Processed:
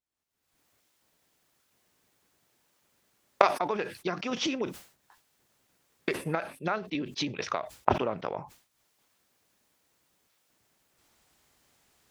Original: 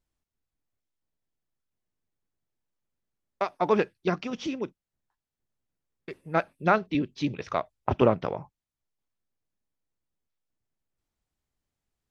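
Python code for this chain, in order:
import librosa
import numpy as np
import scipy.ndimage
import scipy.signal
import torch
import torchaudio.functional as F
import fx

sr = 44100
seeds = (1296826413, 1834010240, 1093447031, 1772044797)

y = fx.recorder_agc(x, sr, target_db=-10.5, rise_db_per_s=51.0, max_gain_db=30)
y = fx.highpass(y, sr, hz=110.0, slope=6)
y = fx.low_shelf(y, sr, hz=340.0, db=-8.5)
y = fx.sustainer(y, sr, db_per_s=130.0)
y = y * librosa.db_to_amplitude(-8.0)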